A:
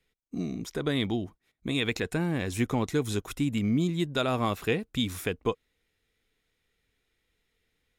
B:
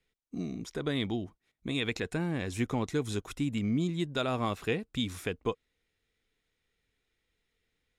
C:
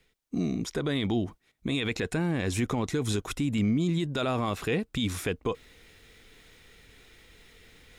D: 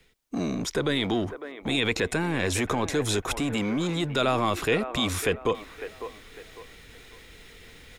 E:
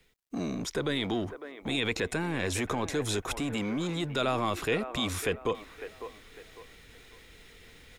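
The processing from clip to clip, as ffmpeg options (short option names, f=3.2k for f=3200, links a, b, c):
-af "lowpass=10k,volume=-3.5dB"
-af "alimiter=level_in=3dB:limit=-24dB:level=0:latency=1:release=28,volume=-3dB,areverse,acompressor=mode=upward:threshold=-47dB:ratio=2.5,areverse,volume=8dB"
-filter_complex "[0:a]acrossover=split=350|2500[a][b][c];[a]asoftclip=type=hard:threshold=-36.5dB[d];[b]aecho=1:1:553|1106|1659|2212:0.335|0.114|0.0387|0.0132[e];[d][e][c]amix=inputs=3:normalize=0,volume=6dB"
-af "acrusher=bits=11:mix=0:aa=0.000001,volume=-4.5dB"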